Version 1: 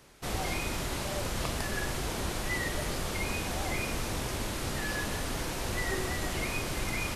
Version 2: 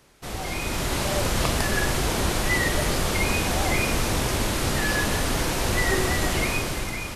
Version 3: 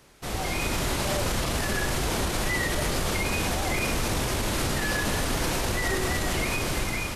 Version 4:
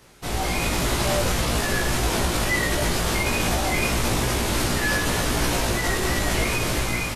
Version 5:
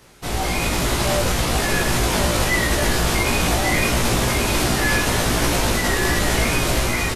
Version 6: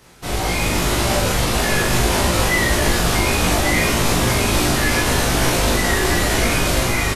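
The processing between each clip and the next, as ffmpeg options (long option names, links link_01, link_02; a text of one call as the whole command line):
ffmpeg -i in.wav -af "dynaudnorm=framelen=130:gausssize=11:maxgain=9.5dB" out.wav
ffmpeg -i in.wav -af "alimiter=limit=-19dB:level=0:latency=1:release=50,volume=1.5dB" out.wav
ffmpeg -i in.wav -filter_complex "[0:a]asplit=2[link_01][link_02];[link_02]adelay=17,volume=-2dB[link_03];[link_01][link_03]amix=inputs=2:normalize=0,volume=2dB" out.wav
ffmpeg -i in.wav -af "aecho=1:1:1145:0.562,volume=2.5dB" out.wav
ffmpeg -i in.wav -filter_complex "[0:a]asplit=2[link_01][link_02];[link_02]adelay=40,volume=-2.5dB[link_03];[link_01][link_03]amix=inputs=2:normalize=0" out.wav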